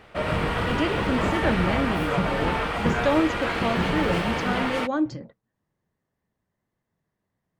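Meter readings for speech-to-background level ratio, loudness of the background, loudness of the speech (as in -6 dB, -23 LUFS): -2.0 dB, -26.0 LUFS, -28.0 LUFS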